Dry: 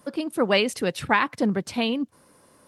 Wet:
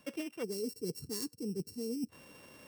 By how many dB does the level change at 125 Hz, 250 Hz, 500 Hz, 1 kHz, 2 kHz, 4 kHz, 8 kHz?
-12.0 dB, -13.0 dB, -14.5 dB, -32.0 dB, -26.5 dB, -17.0 dB, -6.0 dB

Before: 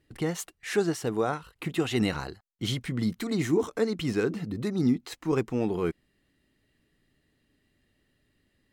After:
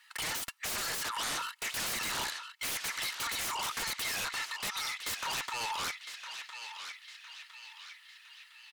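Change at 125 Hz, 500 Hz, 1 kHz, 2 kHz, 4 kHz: -22.0 dB, -20.0 dB, +1.0 dB, +3.0 dB, +4.5 dB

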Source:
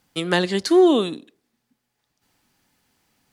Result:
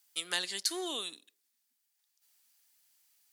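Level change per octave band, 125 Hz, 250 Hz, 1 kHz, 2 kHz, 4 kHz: under -30 dB, -26.5 dB, -18.0 dB, -11.5 dB, -6.0 dB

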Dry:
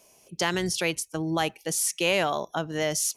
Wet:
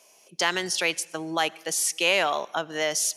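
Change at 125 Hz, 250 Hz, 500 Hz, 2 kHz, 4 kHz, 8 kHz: -10.5 dB, -5.0 dB, -0.5 dB, +3.5 dB, +3.5 dB, +1.5 dB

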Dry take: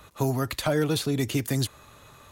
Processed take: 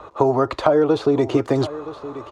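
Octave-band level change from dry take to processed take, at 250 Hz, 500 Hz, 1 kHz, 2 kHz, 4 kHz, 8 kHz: +7.0 dB, +12.0 dB, +12.0 dB, +1.0 dB, -3.0 dB, under -10 dB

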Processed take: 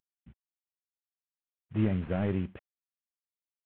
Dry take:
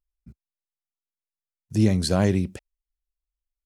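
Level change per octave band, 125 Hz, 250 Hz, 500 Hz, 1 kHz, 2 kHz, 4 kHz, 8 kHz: -8.5 dB, -8.0 dB, -9.0 dB, -9.5 dB, -8.0 dB, -20.5 dB, under -40 dB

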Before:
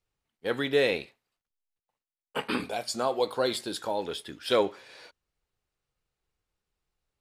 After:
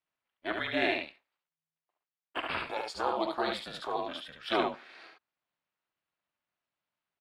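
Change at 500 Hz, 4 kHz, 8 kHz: -7.0 dB, -3.5 dB, -14.0 dB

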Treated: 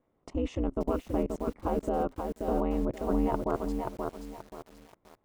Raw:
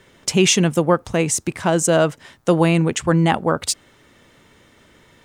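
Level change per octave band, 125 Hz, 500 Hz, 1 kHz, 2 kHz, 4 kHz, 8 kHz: -18.0 dB, -12.0 dB, -11.0 dB, -24.0 dB, under -25 dB, under -30 dB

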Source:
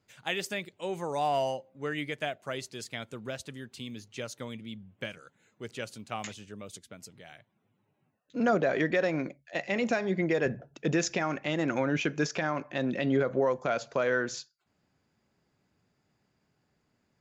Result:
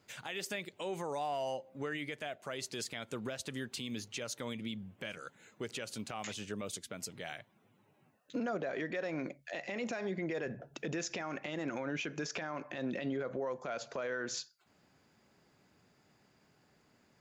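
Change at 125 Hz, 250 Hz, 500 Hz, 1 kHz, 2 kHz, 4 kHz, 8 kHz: -9.0 dB, -8.0 dB, -8.5 dB, -8.5 dB, -7.5 dB, -3.5 dB, -2.0 dB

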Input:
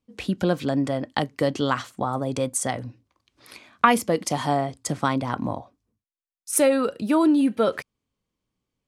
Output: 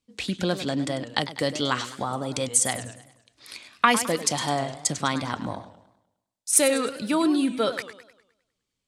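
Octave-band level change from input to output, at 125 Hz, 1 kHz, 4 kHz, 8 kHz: -3.5 dB, -2.5 dB, +5.5 dB, +6.0 dB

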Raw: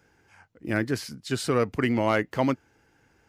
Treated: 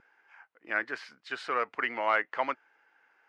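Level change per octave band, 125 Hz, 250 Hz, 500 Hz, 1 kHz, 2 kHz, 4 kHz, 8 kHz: under -30 dB, -19.5 dB, -8.5 dB, 0.0 dB, +1.5 dB, -7.0 dB, under -15 dB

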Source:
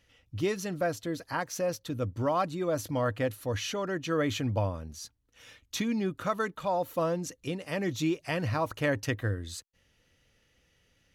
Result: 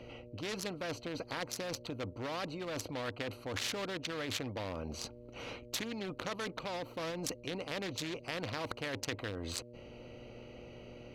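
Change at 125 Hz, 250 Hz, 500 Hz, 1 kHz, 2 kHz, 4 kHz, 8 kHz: -11.0 dB, -9.5 dB, -9.0 dB, -9.5 dB, -5.0 dB, 0.0 dB, -2.5 dB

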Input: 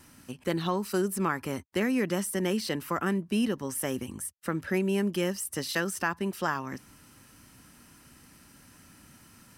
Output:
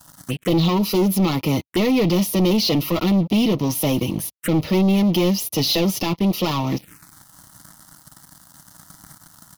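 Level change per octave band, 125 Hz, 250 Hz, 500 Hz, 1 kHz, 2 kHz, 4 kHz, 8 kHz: +14.0 dB, +12.0 dB, +8.5 dB, +6.0 dB, +2.0 dB, +14.5 dB, +6.5 dB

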